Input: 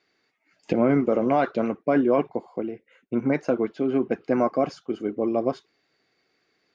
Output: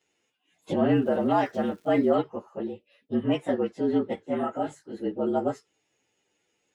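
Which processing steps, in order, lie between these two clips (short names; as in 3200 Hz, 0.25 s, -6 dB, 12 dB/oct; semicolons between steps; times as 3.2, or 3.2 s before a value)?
inharmonic rescaling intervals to 113%; 0.95–2.09 crackle 550/s -51 dBFS; 4.16–4.96 detuned doubles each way 21 cents -> 41 cents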